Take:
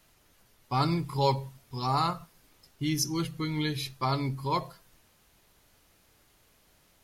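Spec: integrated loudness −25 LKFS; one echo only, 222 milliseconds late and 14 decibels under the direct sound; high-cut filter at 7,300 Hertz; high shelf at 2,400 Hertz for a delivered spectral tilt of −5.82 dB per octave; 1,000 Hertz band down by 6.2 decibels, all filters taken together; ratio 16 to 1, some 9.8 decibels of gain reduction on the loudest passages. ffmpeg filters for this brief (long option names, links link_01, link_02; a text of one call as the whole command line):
ffmpeg -i in.wav -af "lowpass=7300,equalizer=frequency=1000:width_type=o:gain=-7,highshelf=frequency=2400:gain=-4,acompressor=threshold=-33dB:ratio=16,aecho=1:1:222:0.2,volume=14dB" out.wav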